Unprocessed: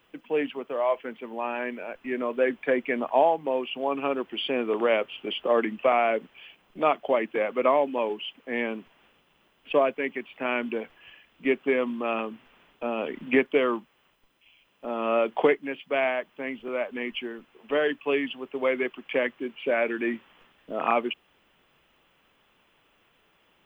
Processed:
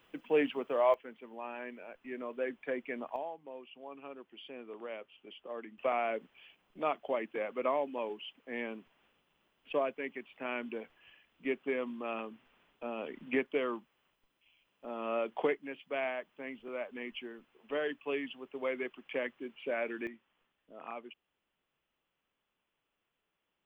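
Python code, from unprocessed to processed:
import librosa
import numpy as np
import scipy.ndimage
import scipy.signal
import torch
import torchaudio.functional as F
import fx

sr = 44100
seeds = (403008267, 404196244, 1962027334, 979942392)

y = fx.gain(x, sr, db=fx.steps((0.0, -2.0), (0.94, -12.0), (3.16, -20.0), (5.78, -10.0), (20.07, -20.0)))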